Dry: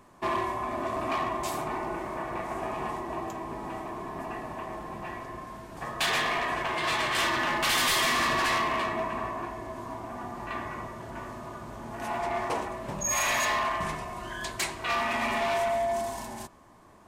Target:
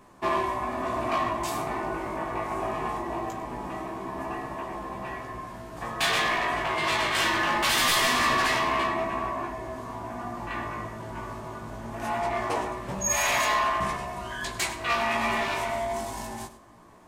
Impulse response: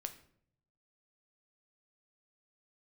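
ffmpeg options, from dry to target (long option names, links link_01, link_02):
-filter_complex "[0:a]flanger=delay=15:depth=3.5:speed=0.22,asplit=2[link_01][link_02];[1:a]atrim=start_sample=2205,adelay=99[link_03];[link_02][link_03]afir=irnorm=-1:irlink=0,volume=-12dB[link_04];[link_01][link_04]amix=inputs=2:normalize=0,volume=5dB"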